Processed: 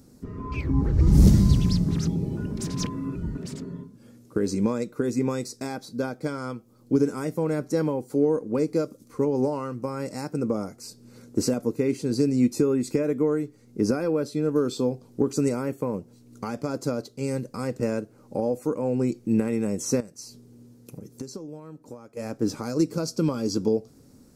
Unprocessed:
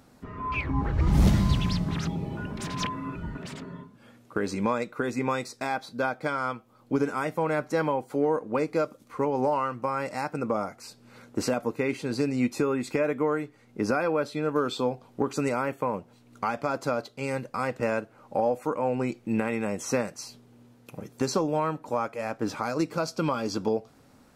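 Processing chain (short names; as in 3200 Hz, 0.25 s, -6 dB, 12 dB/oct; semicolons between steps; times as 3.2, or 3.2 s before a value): 20–22.17 compressor 4:1, threshold -41 dBFS, peak gain reduction 16.5 dB; band shelf 1500 Hz -13 dB 2.9 oct; gain +5 dB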